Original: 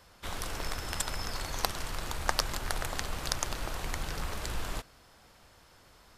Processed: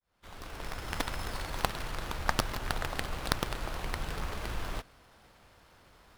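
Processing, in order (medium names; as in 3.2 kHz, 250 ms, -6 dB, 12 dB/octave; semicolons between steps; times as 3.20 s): fade-in on the opening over 0.98 s; sliding maximum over 5 samples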